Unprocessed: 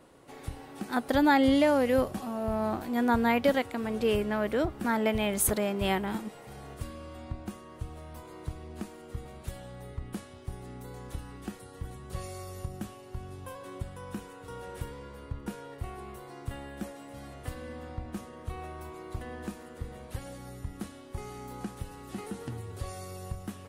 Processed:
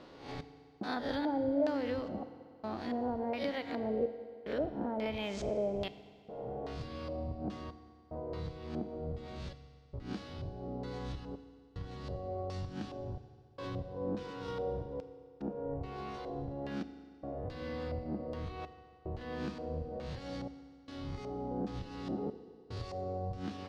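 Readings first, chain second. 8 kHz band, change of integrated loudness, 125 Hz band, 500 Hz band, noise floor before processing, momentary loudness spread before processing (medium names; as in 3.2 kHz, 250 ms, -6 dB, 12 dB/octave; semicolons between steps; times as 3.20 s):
under -20 dB, -7.5 dB, -3.5 dB, -5.0 dB, -49 dBFS, 18 LU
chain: reverse spectral sustain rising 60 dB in 0.50 s; careless resampling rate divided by 3×, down filtered, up hold; bass shelf 440 Hz +5 dB; compression 6:1, threshold -33 dBFS, peak gain reduction 16.5 dB; trance gate "xx..xxxxx" 74 bpm -60 dB; bass shelf 140 Hz -8.5 dB; LFO low-pass square 1.2 Hz 620–4600 Hz; FDN reverb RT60 2.2 s, low-frequency decay 0.85×, high-frequency decay 0.85×, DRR 10.5 dB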